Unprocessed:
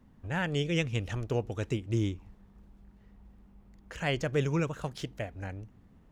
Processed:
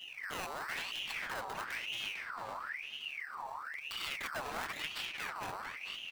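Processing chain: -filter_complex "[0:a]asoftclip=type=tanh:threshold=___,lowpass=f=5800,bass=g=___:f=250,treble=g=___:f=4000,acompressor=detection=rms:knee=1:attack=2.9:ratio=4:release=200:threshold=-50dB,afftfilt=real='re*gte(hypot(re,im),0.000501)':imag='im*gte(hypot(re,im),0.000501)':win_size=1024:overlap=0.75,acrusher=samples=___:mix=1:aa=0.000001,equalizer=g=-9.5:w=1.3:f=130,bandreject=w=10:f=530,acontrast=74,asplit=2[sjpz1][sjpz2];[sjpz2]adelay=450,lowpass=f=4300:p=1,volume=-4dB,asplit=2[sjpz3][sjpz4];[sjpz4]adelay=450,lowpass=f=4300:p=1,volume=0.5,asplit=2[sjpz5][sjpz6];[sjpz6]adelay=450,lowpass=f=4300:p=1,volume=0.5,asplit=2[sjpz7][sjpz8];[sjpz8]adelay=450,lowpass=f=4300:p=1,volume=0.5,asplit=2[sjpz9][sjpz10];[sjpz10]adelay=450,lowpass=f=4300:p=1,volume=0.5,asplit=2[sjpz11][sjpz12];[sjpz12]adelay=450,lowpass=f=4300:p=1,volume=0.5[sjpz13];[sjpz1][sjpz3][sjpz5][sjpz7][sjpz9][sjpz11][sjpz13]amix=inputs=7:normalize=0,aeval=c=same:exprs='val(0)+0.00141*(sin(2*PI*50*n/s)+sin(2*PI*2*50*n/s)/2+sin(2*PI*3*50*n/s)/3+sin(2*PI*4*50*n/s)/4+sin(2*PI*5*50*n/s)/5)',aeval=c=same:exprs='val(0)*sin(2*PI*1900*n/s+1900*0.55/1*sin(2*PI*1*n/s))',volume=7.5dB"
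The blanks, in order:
-33.5dB, 1, 11, 13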